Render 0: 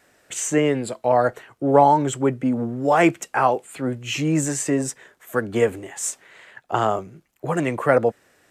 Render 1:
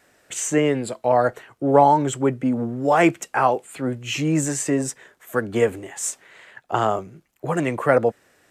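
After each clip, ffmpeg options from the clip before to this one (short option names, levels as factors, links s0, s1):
-af anull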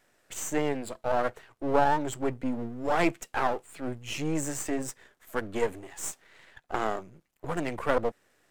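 -af "aeval=exprs='if(lt(val(0),0),0.251*val(0),val(0))':c=same,volume=0.531"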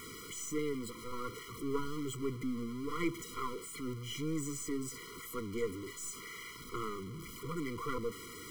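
-af "aeval=exprs='val(0)+0.5*0.0335*sgn(val(0))':c=same,afftfilt=real='re*eq(mod(floor(b*sr/1024/480),2),0)':imag='im*eq(mod(floor(b*sr/1024/480),2),0)':win_size=1024:overlap=0.75,volume=0.355"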